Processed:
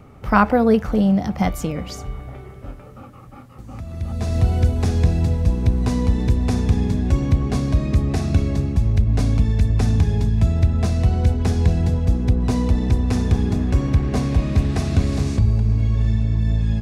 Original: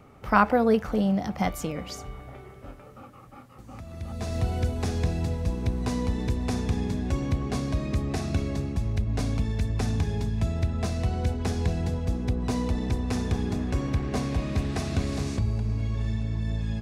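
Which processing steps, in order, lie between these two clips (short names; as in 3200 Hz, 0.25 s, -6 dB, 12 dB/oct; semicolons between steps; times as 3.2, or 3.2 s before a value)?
low shelf 220 Hz +7.5 dB; gain +3.5 dB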